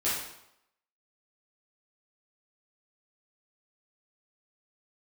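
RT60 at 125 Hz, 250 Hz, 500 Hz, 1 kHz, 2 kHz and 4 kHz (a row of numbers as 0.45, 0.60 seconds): 0.75, 0.70, 0.80, 0.80, 0.70, 0.65 seconds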